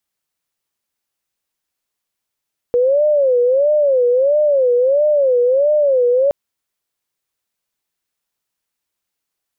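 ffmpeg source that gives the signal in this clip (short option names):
-f lavfi -i "aevalsrc='0.299*sin(2*PI*(544*t-60/(2*PI*1.5)*sin(2*PI*1.5*t)))':d=3.57:s=44100"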